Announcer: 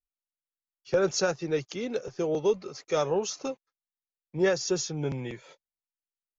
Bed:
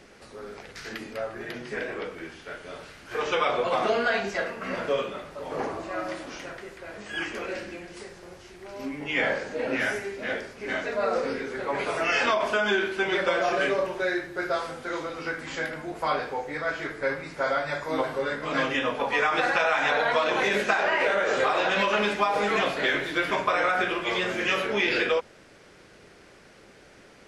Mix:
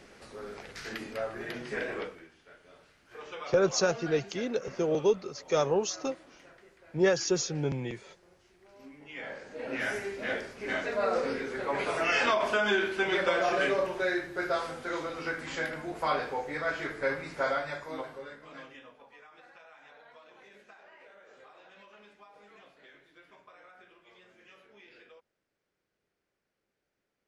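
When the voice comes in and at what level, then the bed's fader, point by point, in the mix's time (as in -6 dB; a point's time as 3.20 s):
2.60 s, 0.0 dB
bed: 2.01 s -2 dB
2.29 s -16.5 dB
9.21 s -16.5 dB
10.02 s -2.5 dB
17.44 s -2.5 dB
19.23 s -31.5 dB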